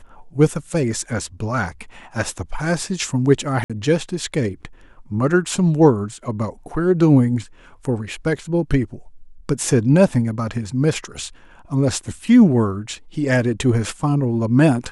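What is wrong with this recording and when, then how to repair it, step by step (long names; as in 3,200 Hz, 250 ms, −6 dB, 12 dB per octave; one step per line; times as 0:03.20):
0:03.64–0:03.70: drop-out 56 ms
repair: repair the gap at 0:03.64, 56 ms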